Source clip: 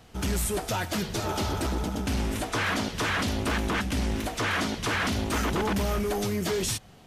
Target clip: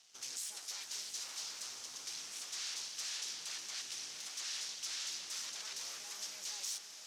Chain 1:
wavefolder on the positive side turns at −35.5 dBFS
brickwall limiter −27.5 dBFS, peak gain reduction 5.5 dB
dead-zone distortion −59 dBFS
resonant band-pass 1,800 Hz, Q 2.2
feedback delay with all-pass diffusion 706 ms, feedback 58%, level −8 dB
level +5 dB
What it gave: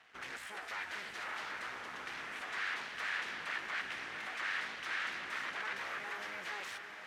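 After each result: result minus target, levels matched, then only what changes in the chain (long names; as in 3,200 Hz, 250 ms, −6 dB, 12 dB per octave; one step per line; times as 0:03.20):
8,000 Hz band −17.5 dB; wavefolder on the positive side: distortion −8 dB
change: resonant band-pass 5,800 Hz, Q 2.2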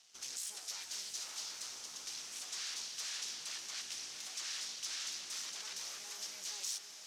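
wavefolder on the positive side: distortion −8 dB
change: wavefolder on the positive side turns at −42.5 dBFS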